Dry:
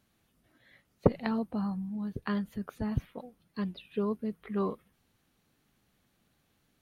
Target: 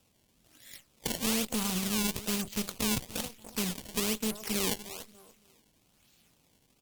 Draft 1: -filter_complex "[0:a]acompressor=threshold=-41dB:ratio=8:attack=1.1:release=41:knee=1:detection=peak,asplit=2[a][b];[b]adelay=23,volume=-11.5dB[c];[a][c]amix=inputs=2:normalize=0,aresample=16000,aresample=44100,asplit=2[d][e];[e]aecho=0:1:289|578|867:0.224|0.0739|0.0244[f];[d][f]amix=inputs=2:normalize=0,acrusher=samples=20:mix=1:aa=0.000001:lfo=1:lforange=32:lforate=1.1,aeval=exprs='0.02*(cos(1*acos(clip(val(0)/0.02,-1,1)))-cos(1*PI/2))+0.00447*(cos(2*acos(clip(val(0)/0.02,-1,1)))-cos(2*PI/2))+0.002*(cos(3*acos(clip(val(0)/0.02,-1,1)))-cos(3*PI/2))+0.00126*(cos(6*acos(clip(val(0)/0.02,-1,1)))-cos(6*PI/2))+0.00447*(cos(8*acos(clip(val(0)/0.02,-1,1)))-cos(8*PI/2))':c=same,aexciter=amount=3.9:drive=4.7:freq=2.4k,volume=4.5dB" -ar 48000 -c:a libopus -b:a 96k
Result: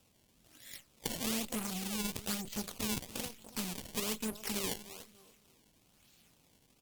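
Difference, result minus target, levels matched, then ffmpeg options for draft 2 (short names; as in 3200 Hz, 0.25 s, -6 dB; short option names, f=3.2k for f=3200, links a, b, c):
compressor: peak gain reduction +5.5 dB
-filter_complex "[0:a]acompressor=threshold=-34.5dB:ratio=8:attack=1.1:release=41:knee=1:detection=peak,asplit=2[a][b];[b]adelay=23,volume=-11.5dB[c];[a][c]amix=inputs=2:normalize=0,aresample=16000,aresample=44100,asplit=2[d][e];[e]aecho=0:1:289|578|867:0.224|0.0739|0.0244[f];[d][f]amix=inputs=2:normalize=0,acrusher=samples=20:mix=1:aa=0.000001:lfo=1:lforange=32:lforate=1.1,aeval=exprs='0.02*(cos(1*acos(clip(val(0)/0.02,-1,1)))-cos(1*PI/2))+0.00447*(cos(2*acos(clip(val(0)/0.02,-1,1)))-cos(2*PI/2))+0.002*(cos(3*acos(clip(val(0)/0.02,-1,1)))-cos(3*PI/2))+0.00126*(cos(6*acos(clip(val(0)/0.02,-1,1)))-cos(6*PI/2))+0.00447*(cos(8*acos(clip(val(0)/0.02,-1,1)))-cos(8*PI/2))':c=same,aexciter=amount=3.9:drive=4.7:freq=2.4k,volume=4.5dB" -ar 48000 -c:a libopus -b:a 96k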